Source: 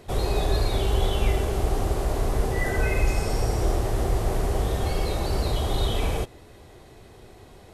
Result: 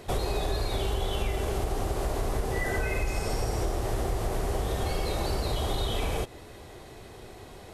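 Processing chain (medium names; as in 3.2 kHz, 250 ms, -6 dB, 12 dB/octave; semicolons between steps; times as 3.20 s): bass shelf 330 Hz -3.5 dB; compression, threshold -29 dBFS, peak gain reduction 10 dB; trim +4 dB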